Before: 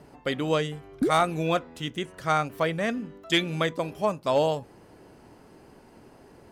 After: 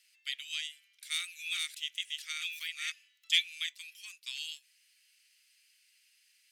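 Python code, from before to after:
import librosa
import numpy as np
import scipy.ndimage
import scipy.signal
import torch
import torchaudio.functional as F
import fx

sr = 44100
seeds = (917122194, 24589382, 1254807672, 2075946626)

y = fx.reverse_delay(x, sr, ms=606, wet_db=-1.5, at=(0.78, 2.92))
y = scipy.signal.sosfilt(scipy.signal.butter(6, 2300.0, 'highpass', fs=sr, output='sos'), y)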